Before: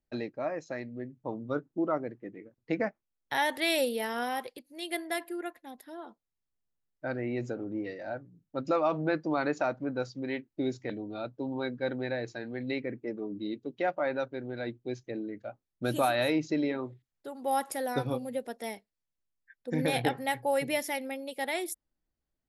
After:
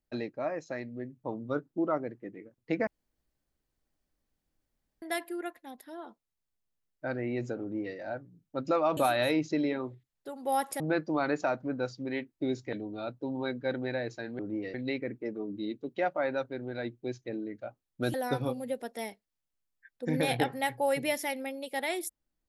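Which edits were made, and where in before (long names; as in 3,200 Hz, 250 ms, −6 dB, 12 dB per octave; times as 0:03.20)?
0:02.87–0:05.02: fill with room tone
0:07.61–0:07.96: duplicate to 0:12.56
0:15.96–0:17.79: move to 0:08.97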